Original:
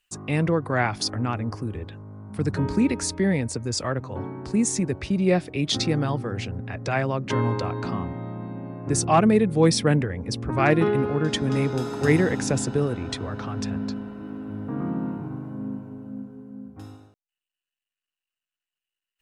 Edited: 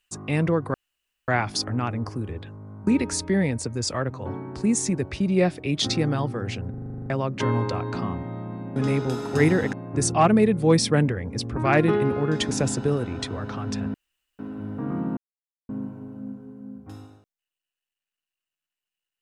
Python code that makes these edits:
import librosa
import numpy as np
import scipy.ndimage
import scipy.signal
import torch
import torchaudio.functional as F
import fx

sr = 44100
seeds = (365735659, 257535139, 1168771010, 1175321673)

y = fx.edit(x, sr, fx.insert_room_tone(at_s=0.74, length_s=0.54),
    fx.cut(start_s=2.33, length_s=0.44),
    fx.stutter_over(start_s=6.6, slice_s=0.04, count=10),
    fx.move(start_s=11.44, length_s=0.97, to_s=8.66),
    fx.room_tone_fill(start_s=13.84, length_s=0.45),
    fx.silence(start_s=15.07, length_s=0.52), tone=tone)